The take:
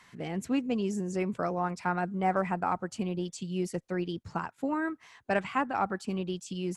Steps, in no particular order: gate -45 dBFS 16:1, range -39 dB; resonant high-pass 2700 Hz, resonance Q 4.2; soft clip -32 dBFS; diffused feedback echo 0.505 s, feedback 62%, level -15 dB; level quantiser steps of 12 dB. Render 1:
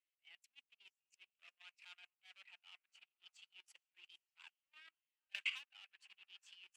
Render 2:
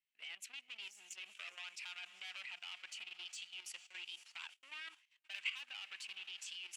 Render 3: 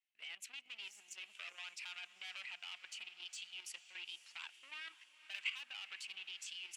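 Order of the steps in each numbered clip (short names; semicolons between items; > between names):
diffused feedback echo > soft clip > resonant high-pass > level quantiser > gate; soft clip > diffused feedback echo > gate > resonant high-pass > level quantiser; gate > soft clip > resonant high-pass > level quantiser > diffused feedback echo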